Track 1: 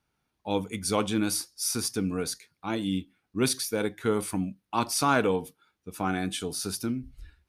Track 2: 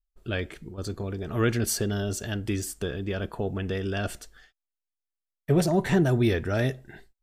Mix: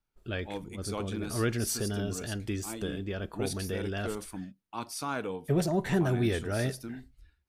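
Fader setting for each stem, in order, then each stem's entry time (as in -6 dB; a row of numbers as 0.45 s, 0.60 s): -10.5 dB, -5.0 dB; 0.00 s, 0.00 s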